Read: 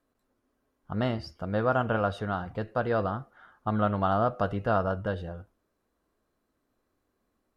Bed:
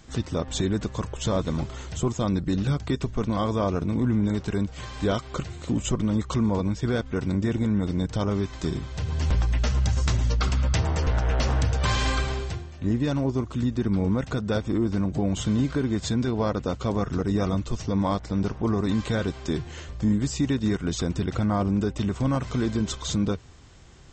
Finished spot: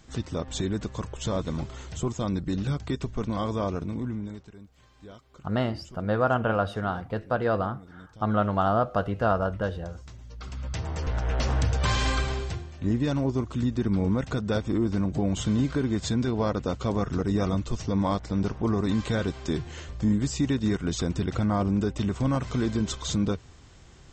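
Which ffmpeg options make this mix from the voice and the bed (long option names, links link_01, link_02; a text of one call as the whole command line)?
ffmpeg -i stem1.wav -i stem2.wav -filter_complex "[0:a]adelay=4550,volume=2dB[link_01];[1:a]volume=17.5dB,afade=type=out:start_time=3.64:duration=0.89:silence=0.11885,afade=type=in:start_time=10.29:duration=1.38:silence=0.0891251[link_02];[link_01][link_02]amix=inputs=2:normalize=0" out.wav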